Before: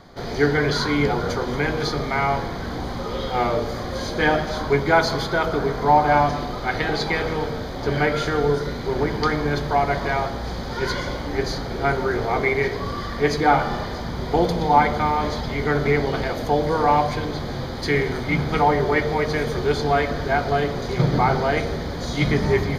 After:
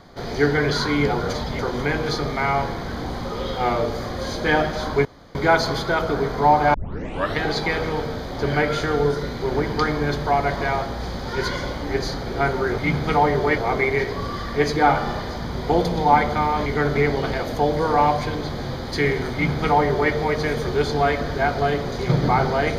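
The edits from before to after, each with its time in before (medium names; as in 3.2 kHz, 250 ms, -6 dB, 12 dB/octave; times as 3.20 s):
4.79 s: insert room tone 0.30 s
6.18 s: tape start 0.64 s
15.30–15.56 s: move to 1.33 s
18.23–19.03 s: copy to 12.22 s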